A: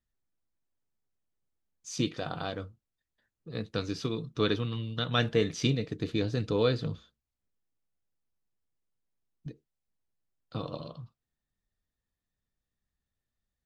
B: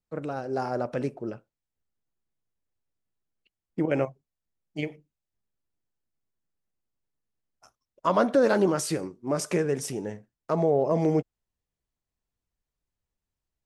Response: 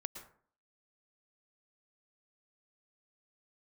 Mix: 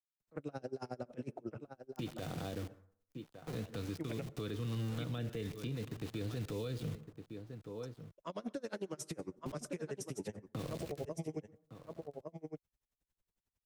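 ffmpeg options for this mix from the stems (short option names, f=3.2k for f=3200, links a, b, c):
-filter_complex "[0:a]lowpass=f=1.2k:p=1,aeval=exprs='val(0)*gte(abs(val(0)),0.00794)':c=same,volume=1dB,asplit=3[a][b][c];[b]volume=-12.5dB[d];[c]volume=-18.5dB[e];[1:a]bandreject=f=4.6k:w=14,acompressor=threshold=-31dB:ratio=2,aeval=exprs='val(0)*pow(10,-32*(0.5-0.5*cos(2*PI*11*n/s))/20)':c=same,adelay=200,volume=2.5dB,asplit=3[f][g][h];[g]volume=-21dB[i];[h]volume=-13.5dB[j];[2:a]atrim=start_sample=2205[k];[d][i]amix=inputs=2:normalize=0[l];[l][k]afir=irnorm=-1:irlink=0[m];[e][j]amix=inputs=2:normalize=0,aecho=0:1:1159:1[n];[a][f][m][n]amix=inputs=4:normalize=0,acrossover=split=110|590|2100[o][p][q][r];[o]acompressor=threshold=-42dB:ratio=4[s];[p]acompressor=threshold=-37dB:ratio=4[t];[q]acompressor=threshold=-52dB:ratio=4[u];[r]acompressor=threshold=-46dB:ratio=4[v];[s][t][u][v]amix=inputs=4:normalize=0,alimiter=level_in=6.5dB:limit=-24dB:level=0:latency=1:release=50,volume=-6.5dB"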